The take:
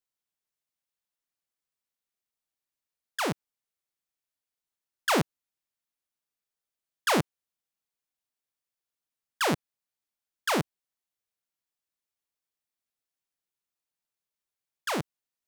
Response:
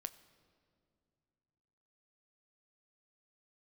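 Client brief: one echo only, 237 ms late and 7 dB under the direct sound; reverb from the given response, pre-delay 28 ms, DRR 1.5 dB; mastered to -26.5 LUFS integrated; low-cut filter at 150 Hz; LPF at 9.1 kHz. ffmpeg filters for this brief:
-filter_complex "[0:a]highpass=150,lowpass=9100,aecho=1:1:237:0.447,asplit=2[s0][s1];[1:a]atrim=start_sample=2205,adelay=28[s2];[s1][s2]afir=irnorm=-1:irlink=0,volume=1.26[s3];[s0][s3]amix=inputs=2:normalize=0,volume=1.33"

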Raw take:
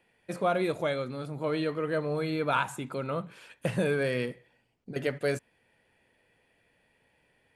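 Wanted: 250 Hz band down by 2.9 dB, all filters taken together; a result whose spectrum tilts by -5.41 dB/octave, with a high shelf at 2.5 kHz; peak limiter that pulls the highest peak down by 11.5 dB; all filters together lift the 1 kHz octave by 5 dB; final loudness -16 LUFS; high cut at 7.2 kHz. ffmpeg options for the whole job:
-af "lowpass=7200,equalizer=f=250:t=o:g=-5,equalizer=f=1000:t=o:g=8.5,highshelf=f=2500:g=-8,volume=7.5,alimiter=limit=0.596:level=0:latency=1"

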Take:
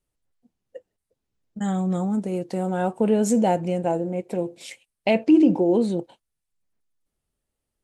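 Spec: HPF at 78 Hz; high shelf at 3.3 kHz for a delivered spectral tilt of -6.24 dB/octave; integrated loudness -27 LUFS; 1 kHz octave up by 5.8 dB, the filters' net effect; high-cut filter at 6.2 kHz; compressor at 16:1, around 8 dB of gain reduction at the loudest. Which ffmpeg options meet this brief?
-af "highpass=78,lowpass=6200,equalizer=f=1000:t=o:g=8,highshelf=f=3300:g=7.5,acompressor=threshold=0.112:ratio=16,volume=0.891"

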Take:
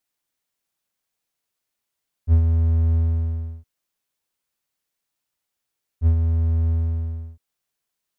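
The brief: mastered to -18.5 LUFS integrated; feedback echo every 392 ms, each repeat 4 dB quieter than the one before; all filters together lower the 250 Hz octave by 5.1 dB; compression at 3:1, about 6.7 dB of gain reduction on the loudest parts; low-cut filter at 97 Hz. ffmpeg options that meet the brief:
-af "highpass=97,equalizer=f=250:t=o:g=-5,acompressor=threshold=0.0447:ratio=3,aecho=1:1:392|784|1176|1568|1960|2352|2744|3136|3528:0.631|0.398|0.25|0.158|0.0994|0.0626|0.0394|0.0249|0.0157,volume=3.35"

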